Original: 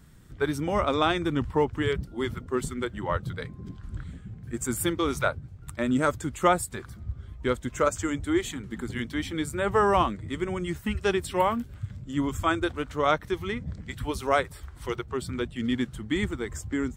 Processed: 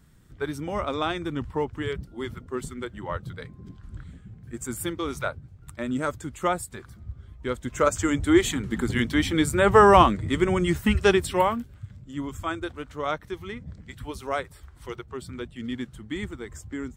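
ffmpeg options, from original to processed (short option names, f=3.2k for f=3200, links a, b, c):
-af "volume=7.5dB,afade=t=in:st=7.47:d=0.98:silence=0.281838,afade=t=out:st=10.94:d=0.79:silence=0.237137"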